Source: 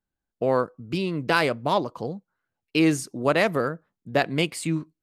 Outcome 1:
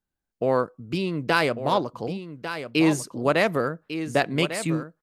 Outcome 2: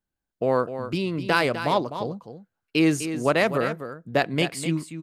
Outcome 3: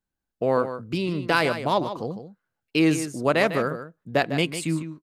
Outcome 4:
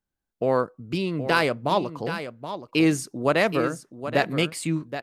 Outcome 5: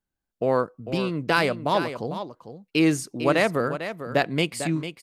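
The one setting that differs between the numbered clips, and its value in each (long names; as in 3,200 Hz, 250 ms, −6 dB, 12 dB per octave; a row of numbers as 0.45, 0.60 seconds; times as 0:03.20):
single-tap delay, delay time: 1,148, 253, 151, 774, 449 milliseconds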